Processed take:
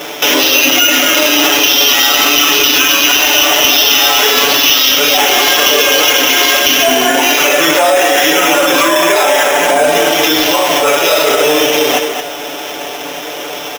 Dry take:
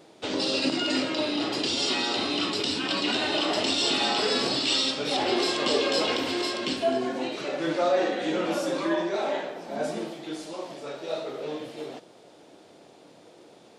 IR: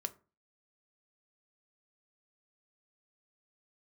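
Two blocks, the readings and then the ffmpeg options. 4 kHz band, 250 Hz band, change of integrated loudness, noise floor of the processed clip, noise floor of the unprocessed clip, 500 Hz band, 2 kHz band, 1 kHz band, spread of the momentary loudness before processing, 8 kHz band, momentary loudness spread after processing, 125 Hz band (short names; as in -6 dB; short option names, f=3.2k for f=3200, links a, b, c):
+18.5 dB, +11.0 dB, +18.5 dB, -23 dBFS, -53 dBFS, +15.5 dB, +22.0 dB, +18.5 dB, 12 LU, +26.5 dB, 10 LU, +8.5 dB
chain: -filter_complex "[0:a]acrossover=split=5500[a][b];[b]acompressor=threshold=-47dB:ratio=4:attack=1:release=60[c];[a][c]amix=inputs=2:normalize=0,highpass=f=1.2k:p=1,highshelf=f=3.9k:t=q:w=3:g=-7,aecho=1:1:6.9:0.77,acompressor=threshold=-37dB:ratio=2,asplit=2[d][e];[e]adelay=220,highpass=300,lowpass=3.4k,asoftclip=type=hard:threshold=-29dB,volume=-7dB[f];[d][f]amix=inputs=2:normalize=0,acrusher=samples=5:mix=1:aa=0.000001,asoftclip=type=hard:threshold=-25dB,alimiter=level_in=34dB:limit=-1dB:release=50:level=0:latency=1,volume=-1dB"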